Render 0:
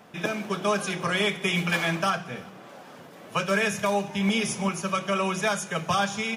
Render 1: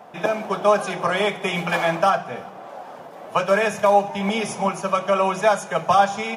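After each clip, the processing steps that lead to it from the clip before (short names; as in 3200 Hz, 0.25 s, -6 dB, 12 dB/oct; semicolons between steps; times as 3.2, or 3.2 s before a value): bell 750 Hz +14.5 dB 1.5 oct; gain -2 dB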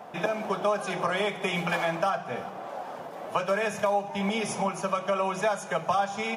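compressor 2.5:1, threshold -27 dBFS, peak gain reduction 11 dB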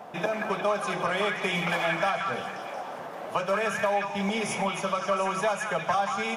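delay with a stepping band-pass 0.179 s, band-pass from 1600 Hz, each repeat 0.7 oct, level 0 dB; in parallel at -7 dB: soft clip -26 dBFS, distortion -10 dB; on the sum: gain -2.5 dB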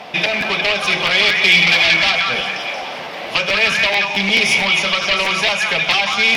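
sine folder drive 9 dB, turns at -14 dBFS; band shelf 3300 Hz +14.5 dB; crackling interface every 0.22 s, samples 512, repeat, from 0.4; gain -4.5 dB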